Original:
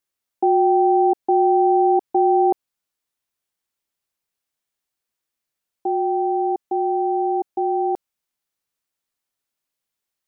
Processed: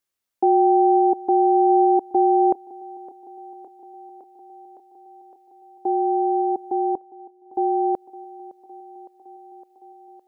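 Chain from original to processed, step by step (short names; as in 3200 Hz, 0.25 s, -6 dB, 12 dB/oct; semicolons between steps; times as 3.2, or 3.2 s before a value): 6.95–7.55 flipped gate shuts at -25 dBFS, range -35 dB; thinning echo 0.561 s, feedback 81%, high-pass 180 Hz, level -19 dB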